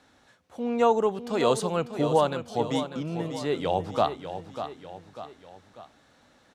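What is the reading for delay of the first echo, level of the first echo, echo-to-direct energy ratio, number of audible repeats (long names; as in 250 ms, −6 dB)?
595 ms, −10.0 dB, −9.0 dB, 3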